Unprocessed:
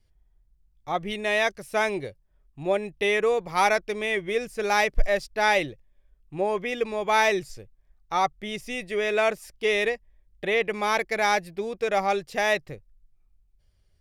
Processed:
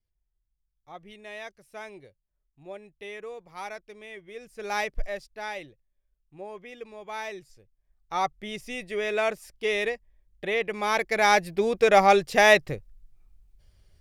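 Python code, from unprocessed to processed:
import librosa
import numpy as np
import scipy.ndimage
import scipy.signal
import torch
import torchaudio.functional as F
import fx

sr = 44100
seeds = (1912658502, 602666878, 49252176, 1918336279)

y = fx.gain(x, sr, db=fx.line((4.31, -16.5), (4.77, -6.0), (5.55, -14.5), (7.57, -14.5), (8.21, -3.0), (10.72, -3.0), (11.68, 6.5)))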